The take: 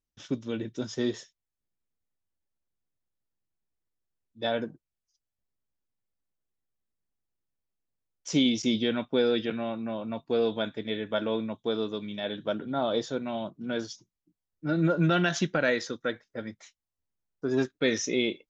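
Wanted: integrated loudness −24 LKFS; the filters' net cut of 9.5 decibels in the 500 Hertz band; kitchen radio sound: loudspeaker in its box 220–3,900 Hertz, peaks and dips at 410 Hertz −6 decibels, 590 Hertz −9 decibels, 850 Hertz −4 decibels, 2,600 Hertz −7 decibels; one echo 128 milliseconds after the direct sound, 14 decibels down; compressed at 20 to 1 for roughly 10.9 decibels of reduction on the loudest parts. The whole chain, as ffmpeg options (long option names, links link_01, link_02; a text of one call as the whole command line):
ffmpeg -i in.wav -af "equalizer=frequency=500:width_type=o:gain=-4.5,acompressor=threshold=-31dB:ratio=20,highpass=220,equalizer=frequency=410:width_type=q:width=4:gain=-6,equalizer=frequency=590:width_type=q:width=4:gain=-9,equalizer=frequency=850:width_type=q:width=4:gain=-4,equalizer=frequency=2600:width_type=q:width=4:gain=-7,lowpass=frequency=3900:width=0.5412,lowpass=frequency=3900:width=1.3066,aecho=1:1:128:0.2,volume=17dB" out.wav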